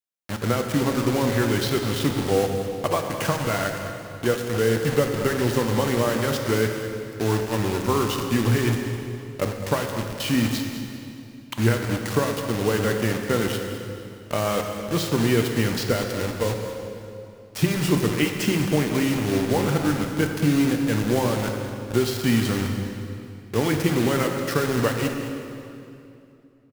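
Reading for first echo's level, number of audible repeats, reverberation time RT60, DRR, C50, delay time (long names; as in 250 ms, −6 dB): −13.5 dB, 1, 2.7 s, 3.0 dB, 4.0 dB, 208 ms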